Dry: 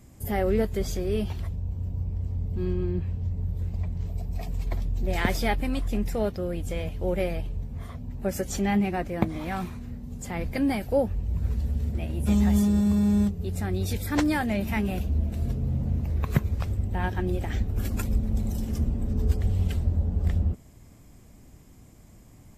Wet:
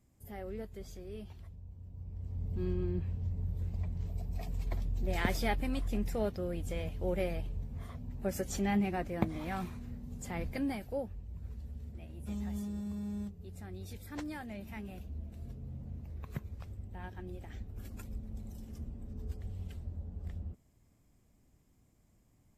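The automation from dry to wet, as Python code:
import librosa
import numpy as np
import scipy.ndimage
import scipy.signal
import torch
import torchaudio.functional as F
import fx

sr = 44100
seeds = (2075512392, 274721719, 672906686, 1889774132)

y = fx.gain(x, sr, db=fx.line((1.87, -18.0), (2.49, -6.5), (10.38, -6.5), (11.28, -17.0)))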